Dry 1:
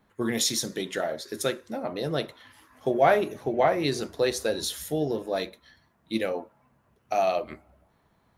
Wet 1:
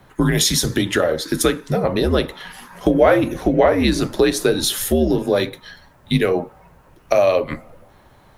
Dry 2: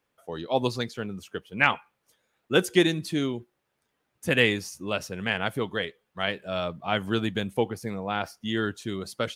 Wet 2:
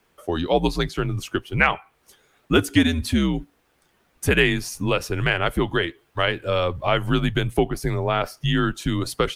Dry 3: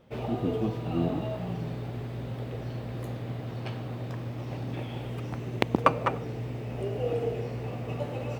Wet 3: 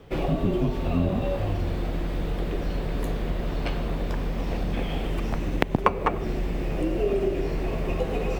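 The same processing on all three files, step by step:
dynamic equaliser 5,900 Hz, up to −4 dB, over −46 dBFS, Q 0.92
downward compressor 2 to 1, threshold −34 dBFS
frequency shifter −77 Hz
normalise the peak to −2 dBFS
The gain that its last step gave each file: +16.5, +13.0, +10.0 decibels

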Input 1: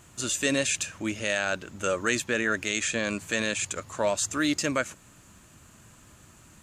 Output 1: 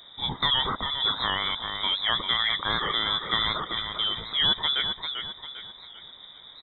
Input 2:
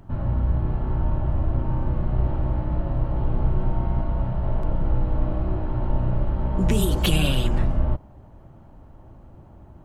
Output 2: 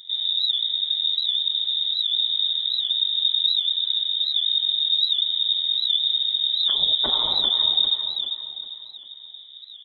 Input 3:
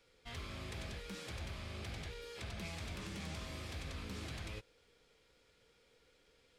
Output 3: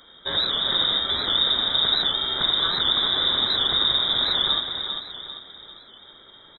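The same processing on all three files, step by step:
in parallel at +1.5 dB: downward compressor, threshold −30 dBFS
on the sum: pitch vibrato 0.54 Hz 5.1 cents
Butterworth band-reject 1,000 Hz, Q 0.71
repeating echo 396 ms, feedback 41%, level −7 dB
voice inversion scrambler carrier 3,700 Hz
wow of a warped record 78 rpm, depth 100 cents
normalise the peak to −9 dBFS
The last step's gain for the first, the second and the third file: −0.5, −6.0, +14.5 decibels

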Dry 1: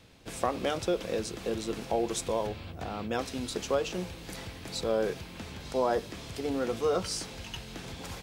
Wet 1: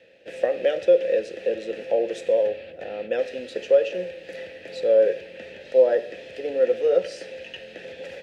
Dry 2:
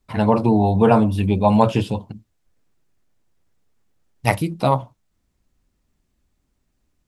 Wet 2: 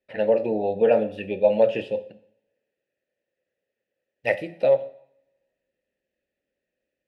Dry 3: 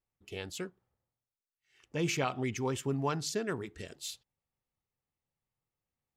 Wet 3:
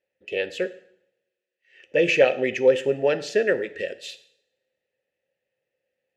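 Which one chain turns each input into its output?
formant filter e
coupled-rooms reverb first 0.61 s, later 1.7 s, from −28 dB, DRR 11.5 dB
loudness normalisation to −23 LKFS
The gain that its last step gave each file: +15.0, +7.5, +24.5 decibels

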